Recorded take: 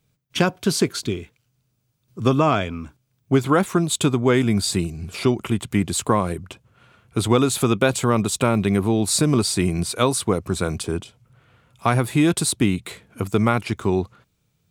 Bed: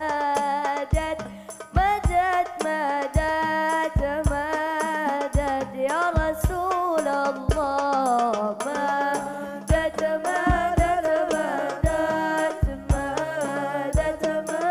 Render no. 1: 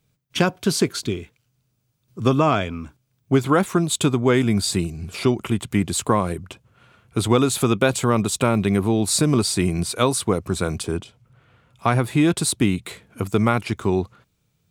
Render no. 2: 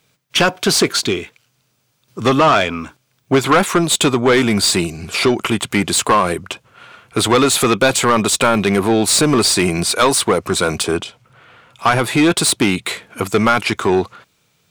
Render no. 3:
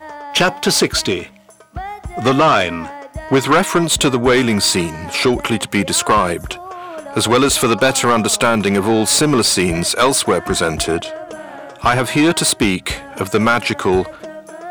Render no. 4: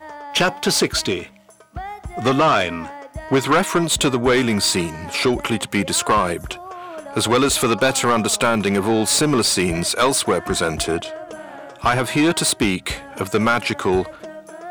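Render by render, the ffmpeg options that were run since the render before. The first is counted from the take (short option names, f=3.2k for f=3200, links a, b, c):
-filter_complex "[0:a]asettb=1/sr,asplit=3[a][b][c];[a]atrim=end=10.974[d];[b]atrim=start=10.97:end=12.43,asetpts=PTS-STARTPTS,afade=t=in:d=0.004:c=qsin,afade=t=out:st=1.456:d=0.004:c=qsin,equalizer=f=13k:w=0.37:g=-5[e];[c]atrim=start=12.426[f];[d][e]acrossfade=d=0.004:c1=hsin:c2=qsin[g];[g][f]acrossfade=d=0.004:c1=qsin:c2=hsin"
-filter_complex "[0:a]asplit=2[a][b];[b]highpass=f=720:p=1,volume=21dB,asoftclip=type=tanh:threshold=-3dB[c];[a][c]amix=inputs=2:normalize=0,lowpass=f=6.3k:p=1,volume=-6dB"
-filter_complex "[1:a]volume=-7dB[a];[0:a][a]amix=inputs=2:normalize=0"
-af "volume=-3.5dB"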